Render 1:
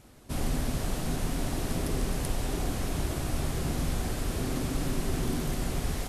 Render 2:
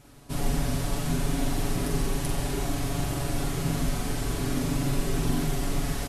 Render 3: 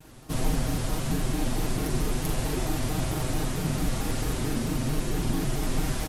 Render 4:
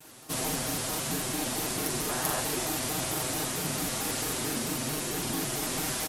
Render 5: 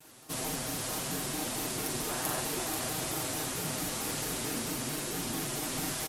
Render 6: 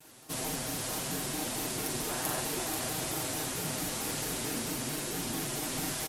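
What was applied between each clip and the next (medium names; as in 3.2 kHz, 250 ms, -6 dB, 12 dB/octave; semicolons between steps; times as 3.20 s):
band-stop 510 Hz, Q 12; comb 7.1 ms; flutter echo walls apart 7.5 m, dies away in 0.48 s
gain riding within 3 dB 0.5 s; vibrato with a chosen wave square 4.5 Hz, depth 160 cents
high-pass 420 Hz 6 dB/octave; time-frequency box 2.09–2.41 s, 530–1900 Hz +6 dB; treble shelf 4.5 kHz +7 dB; trim +1 dB
delay 486 ms -6.5 dB; trim -4 dB
peaking EQ 1.2 kHz -2.5 dB 0.21 oct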